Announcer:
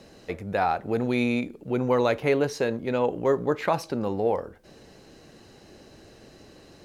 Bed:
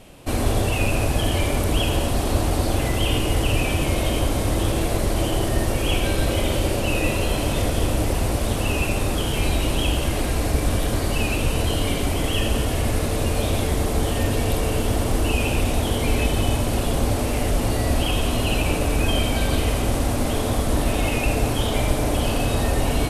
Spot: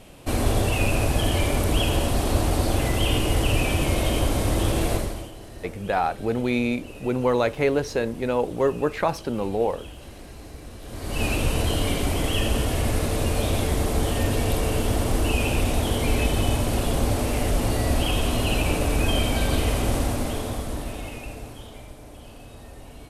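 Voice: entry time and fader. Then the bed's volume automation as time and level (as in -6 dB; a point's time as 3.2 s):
5.35 s, +1.0 dB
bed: 4.94 s -1 dB
5.36 s -20 dB
10.79 s -20 dB
11.24 s -1.5 dB
19.98 s -1.5 dB
21.95 s -22 dB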